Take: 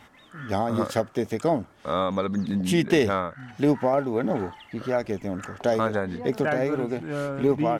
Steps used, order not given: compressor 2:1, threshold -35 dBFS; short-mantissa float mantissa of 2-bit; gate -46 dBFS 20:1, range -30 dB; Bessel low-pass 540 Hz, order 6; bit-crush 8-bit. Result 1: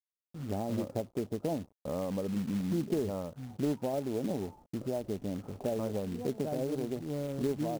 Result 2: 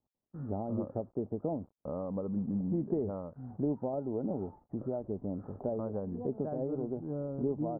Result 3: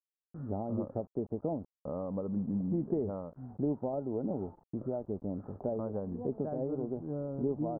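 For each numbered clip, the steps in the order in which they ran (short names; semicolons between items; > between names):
gate > bit-crush > Bessel low-pass > compressor > short-mantissa float; bit-crush > compressor > gate > short-mantissa float > Bessel low-pass; compressor > short-mantissa float > gate > bit-crush > Bessel low-pass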